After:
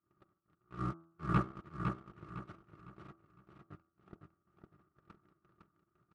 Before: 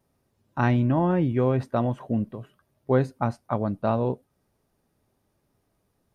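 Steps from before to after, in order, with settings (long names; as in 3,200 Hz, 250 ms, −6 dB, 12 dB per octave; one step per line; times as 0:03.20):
compressor on every frequency bin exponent 0.2
in parallel at −2 dB: brickwall limiter −14.5 dBFS, peak gain reduction 11 dB
on the sum: formant filter a
output level in coarse steps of 11 dB
drawn EQ curve 330 Hz 0 dB, 770 Hz −20 dB, 1,100 Hz −24 dB, 2,100 Hz +8 dB
noise gate −38 dBFS, range −54 dB
leveller curve on the samples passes 2
notch comb filter 510 Hz
hum removal 165.7 Hz, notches 19
pitch shifter −12 semitones
parametric band 490 Hz +4 dB 1.2 octaves
on a send: repeating echo 507 ms, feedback 32%, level −5.5 dB
on the sum: level +11 dB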